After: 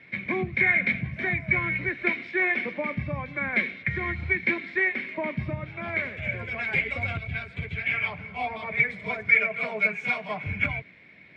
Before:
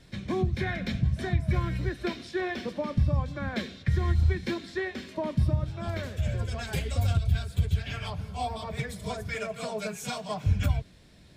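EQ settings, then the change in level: HPF 160 Hz 12 dB/oct; synth low-pass 2200 Hz, resonance Q 13; 0.0 dB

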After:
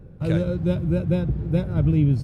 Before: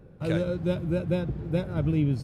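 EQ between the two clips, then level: low shelf 200 Hz +10.5 dB; 0.0 dB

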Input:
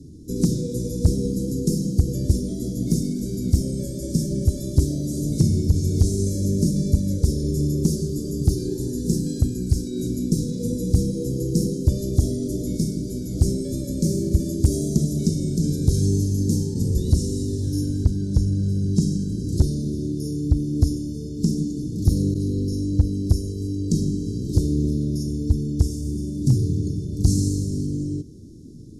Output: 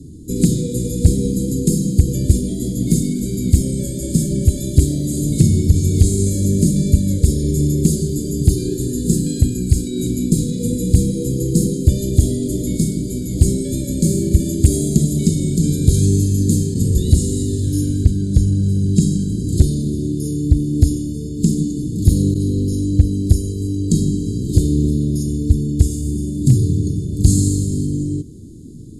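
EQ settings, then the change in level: bell 6700 Hz +15 dB 1 oct; dynamic EQ 2500 Hz, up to +6 dB, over -43 dBFS, Q 1; fixed phaser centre 2500 Hz, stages 4; +6.0 dB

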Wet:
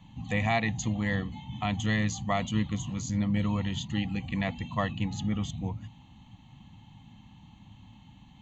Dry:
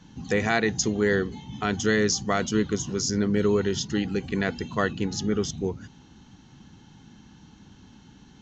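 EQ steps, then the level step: bell 110 Hz +7 dB 0.21 oct; fixed phaser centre 1500 Hz, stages 6; 0.0 dB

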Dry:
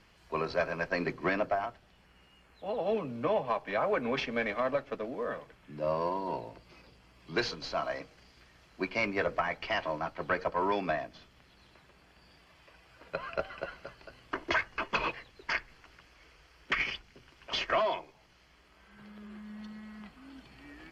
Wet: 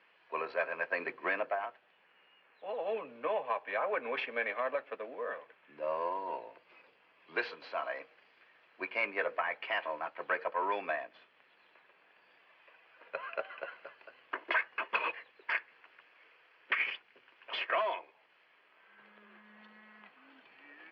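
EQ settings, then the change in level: speaker cabinet 450–3400 Hz, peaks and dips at 490 Hz +4 dB, 1000 Hz +3 dB, 1700 Hz +5 dB, 2500 Hz +5 dB; -4.5 dB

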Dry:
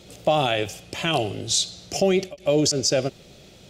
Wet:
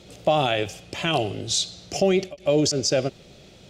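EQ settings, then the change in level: high shelf 10000 Hz -10 dB; 0.0 dB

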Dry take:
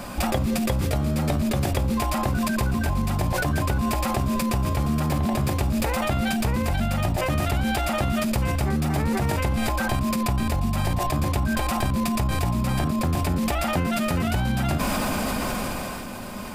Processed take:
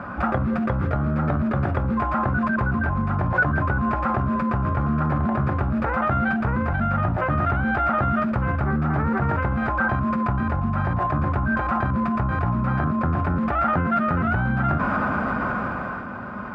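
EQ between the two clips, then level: HPF 94 Hz 12 dB/oct; synth low-pass 1400 Hz, resonance Q 4.7; low shelf 170 Hz +9 dB; -2.5 dB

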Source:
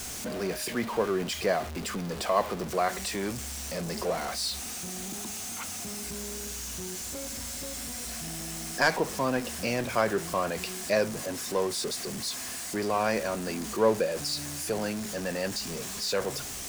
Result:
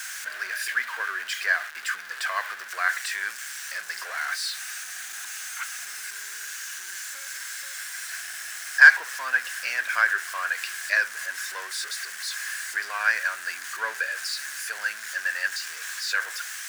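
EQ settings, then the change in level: resonant high-pass 1600 Hz, resonance Q 6.9; 0.0 dB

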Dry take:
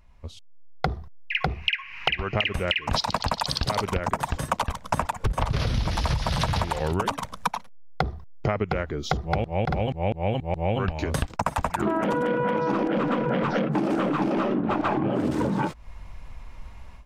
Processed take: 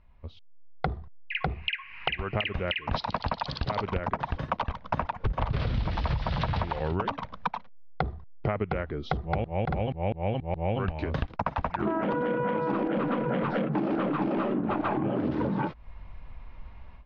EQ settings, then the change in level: LPF 4800 Hz 24 dB/oct; air absorption 180 m; -3.0 dB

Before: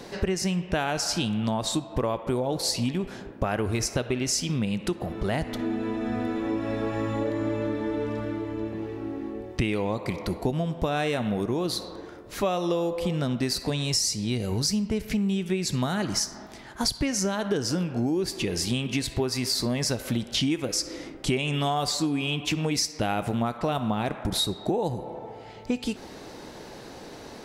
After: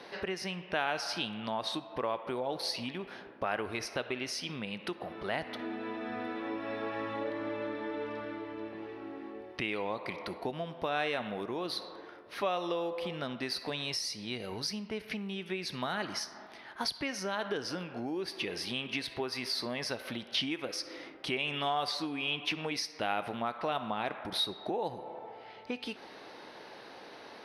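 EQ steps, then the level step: running mean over 6 samples; HPF 1000 Hz 6 dB/oct; 0.0 dB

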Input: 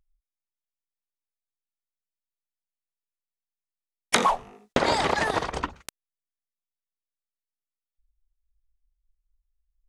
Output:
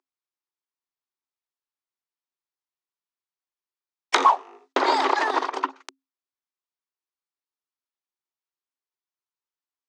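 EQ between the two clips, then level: rippled Chebyshev high-pass 260 Hz, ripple 9 dB; air absorption 93 m; bell 5500 Hz +6.5 dB 1.5 oct; +6.5 dB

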